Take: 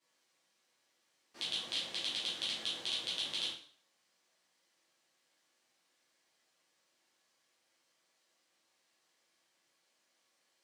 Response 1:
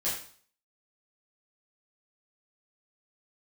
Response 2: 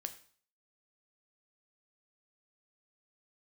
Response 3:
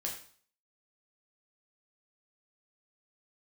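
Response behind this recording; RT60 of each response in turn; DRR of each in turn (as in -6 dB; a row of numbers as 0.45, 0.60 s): 1; 0.50, 0.50, 0.50 s; -10.0, 8.0, -1.5 dB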